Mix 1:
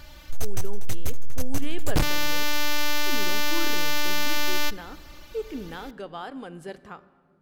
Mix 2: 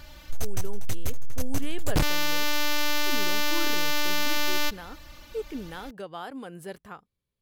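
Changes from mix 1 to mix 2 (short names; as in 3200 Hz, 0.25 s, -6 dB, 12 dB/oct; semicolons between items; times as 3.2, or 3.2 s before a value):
speech: remove LPF 7800 Hz 12 dB/oct; reverb: off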